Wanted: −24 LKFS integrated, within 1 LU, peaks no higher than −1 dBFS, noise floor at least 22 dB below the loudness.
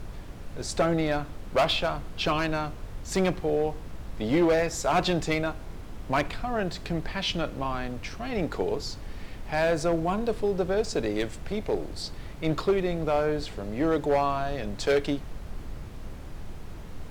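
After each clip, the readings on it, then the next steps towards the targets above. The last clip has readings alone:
share of clipped samples 0.9%; peaks flattened at −17.5 dBFS; background noise floor −40 dBFS; target noise floor −50 dBFS; integrated loudness −28.0 LKFS; sample peak −17.5 dBFS; target loudness −24.0 LKFS
→ clipped peaks rebuilt −17.5 dBFS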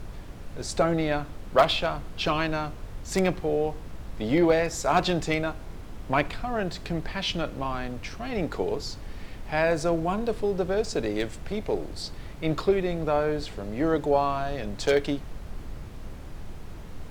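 share of clipped samples 0.0%; background noise floor −40 dBFS; target noise floor −50 dBFS
→ noise reduction from a noise print 10 dB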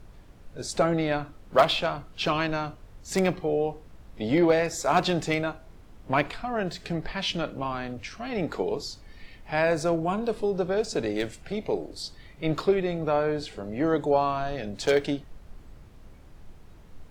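background noise floor −50 dBFS; integrated loudness −27.5 LKFS; sample peak −8.0 dBFS; target loudness −24.0 LKFS
→ level +3.5 dB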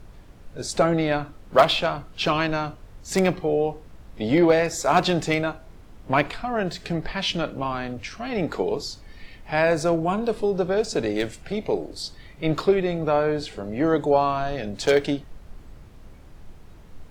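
integrated loudness −24.0 LKFS; sample peak −4.5 dBFS; background noise floor −46 dBFS

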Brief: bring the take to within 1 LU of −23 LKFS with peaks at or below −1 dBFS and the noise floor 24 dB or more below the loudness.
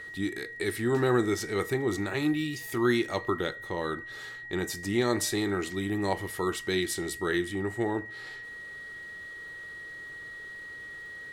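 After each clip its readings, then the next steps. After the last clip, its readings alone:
crackle rate 22 per second; interfering tone 1,900 Hz; level of the tone −40 dBFS; integrated loudness −31.0 LKFS; sample peak −12.5 dBFS; target loudness −23.0 LKFS
→ click removal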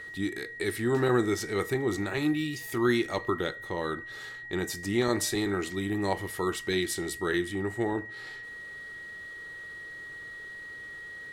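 crackle rate 0 per second; interfering tone 1,900 Hz; level of the tone −40 dBFS
→ notch filter 1,900 Hz, Q 30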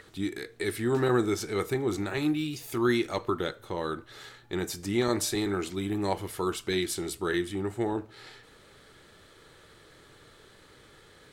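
interfering tone none found; integrated loudness −30.0 LKFS; sample peak −13.0 dBFS; target loudness −23.0 LKFS
→ level +7 dB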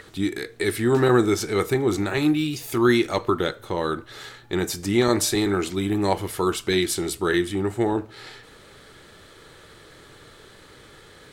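integrated loudness −23.0 LKFS; sample peak −6.0 dBFS; background noise floor −49 dBFS

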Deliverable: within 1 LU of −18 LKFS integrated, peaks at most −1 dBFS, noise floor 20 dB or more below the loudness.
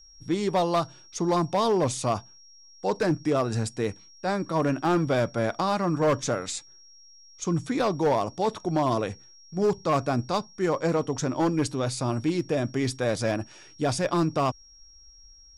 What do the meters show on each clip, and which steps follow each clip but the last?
share of clipped samples 1.2%; peaks flattened at −17.5 dBFS; interfering tone 5,600 Hz; level of the tone −51 dBFS; integrated loudness −27.0 LKFS; sample peak −17.5 dBFS; target loudness −18.0 LKFS
→ clipped peaks rebuilt −17.5 dBFS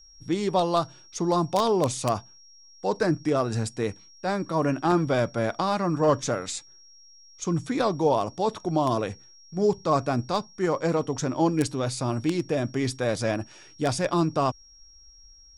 share of clipped samples 0.0%; interfering tone 5,600 Hz; level of the tone −51 dBFS
→ notch filter 5,600 Hz, Q 30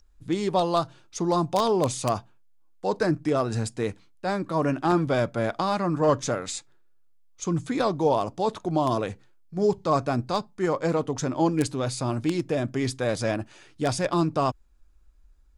interfering tone none found; integrated loudness −26.5 LKFS; sample peak −8.5 dBFS; target loudness −18.0 LKFS
→ level +8.5 dB
brickwall limiter −1 dBFS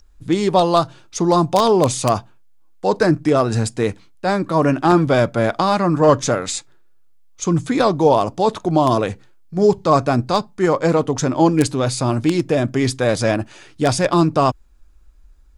integrated loudness −18.0 LKFS; sample peak −1.0 dBFS; background noise floor −48 dBFS

